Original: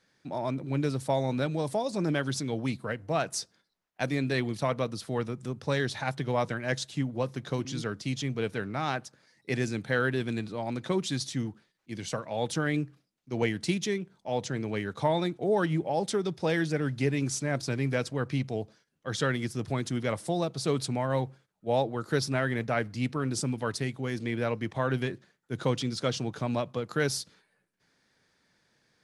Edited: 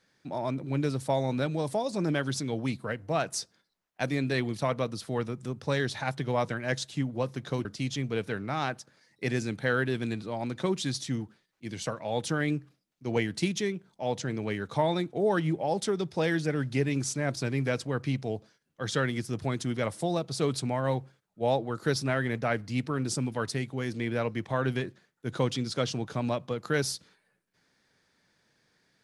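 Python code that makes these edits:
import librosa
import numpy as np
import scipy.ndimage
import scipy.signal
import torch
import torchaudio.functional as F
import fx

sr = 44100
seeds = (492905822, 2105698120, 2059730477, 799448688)

y = fx.edit(x, sr, fx.cut(start_s=7.65, length_s=0.26), tone=tone)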